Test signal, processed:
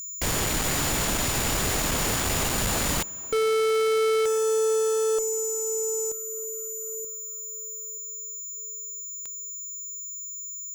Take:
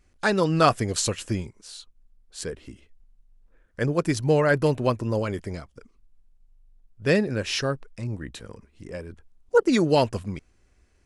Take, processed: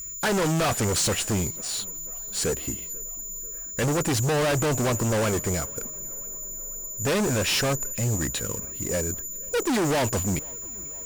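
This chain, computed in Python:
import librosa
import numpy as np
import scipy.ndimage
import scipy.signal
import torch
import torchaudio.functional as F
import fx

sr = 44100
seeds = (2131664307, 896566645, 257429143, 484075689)

p1 = fx.dynamic_eq(x, sr, hz=740.0, q=1.4, threshold_db=-34.0, ratio=4.0, max_db=4)
p2 = p1 + 10.0 ** (-38.0 / 20.0) * np.sin(2.0 * np.pi * 7000.0 * np.arange(len(p1)) / sr)
p3 = fx.fuzz(p2, sr, gain_db=36.0, gate_db=-42.0)
p4 = p3 + fx.echo_tape(p3, sr, ms=491, feedback_pct=85, wet_db=-21.5, lp_hz=2300.0, drive_db=12.0, wow_cents=8, dry=0)
y = F.gain(torch.from_numpy(p4), -8.5).numpy()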